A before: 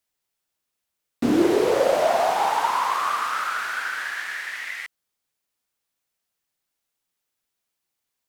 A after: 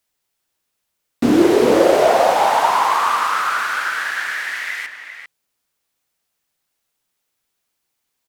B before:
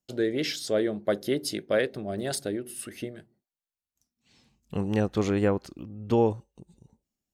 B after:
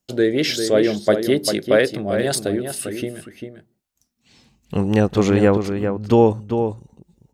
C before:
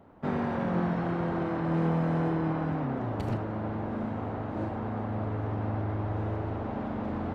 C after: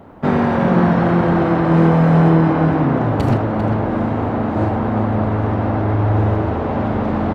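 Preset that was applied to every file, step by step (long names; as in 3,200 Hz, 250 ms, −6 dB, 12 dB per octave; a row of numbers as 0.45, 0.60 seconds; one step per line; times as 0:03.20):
slap from a distant wall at 68 metres, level −7 dB
normalise the peak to −1.5 dBFS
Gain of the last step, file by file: +6.0, +9.0, +14.0 decibels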